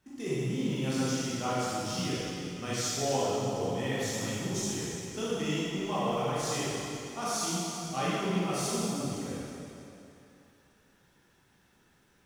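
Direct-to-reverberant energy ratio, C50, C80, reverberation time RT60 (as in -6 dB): -9.5 dB, -5.0 dB, -2.5 dB, 2.8 s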